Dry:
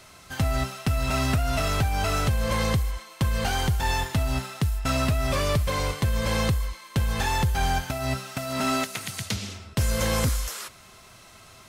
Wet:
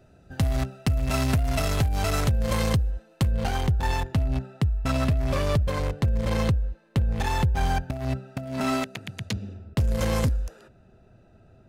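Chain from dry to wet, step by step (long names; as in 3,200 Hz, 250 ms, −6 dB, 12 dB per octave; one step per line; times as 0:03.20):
adaptive Wiener filter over 41 samples
high-shelf EQ 4,200 Hz +5.5 dB, from 0:03.31 −4.5 dB
level +1.5 dB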